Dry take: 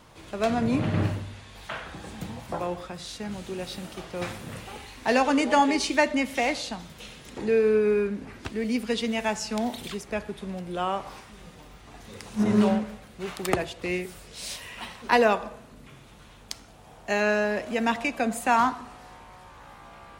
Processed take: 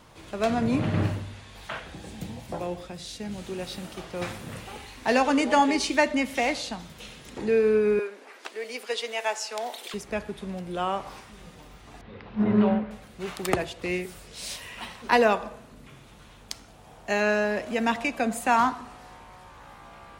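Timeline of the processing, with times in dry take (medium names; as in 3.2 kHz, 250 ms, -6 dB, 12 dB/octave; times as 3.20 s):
1.79–3.38 s: peaking EQ 1.2 kHz -7.5 dB 1.1 oct
7.99–9.94 s: high-pass 440 Hz 24 dB/octave
12.01–12.91 s: Bessel low-pass 2.3 kHz, order 8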